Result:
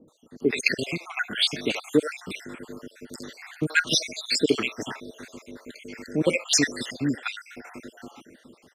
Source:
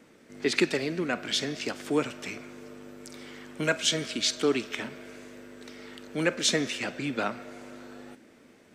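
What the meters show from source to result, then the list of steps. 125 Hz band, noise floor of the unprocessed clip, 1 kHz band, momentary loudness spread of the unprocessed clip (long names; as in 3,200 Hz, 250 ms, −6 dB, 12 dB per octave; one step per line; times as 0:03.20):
+3.5 dB, −56 dBFS, 0.0 dB, 20 LU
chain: time-frequency cells dropped at random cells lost 64%
multiband delay without the direct sound lows, highs 80 ms, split 660 Hz
automatic gain control gain up to 4 dB
level +4 dB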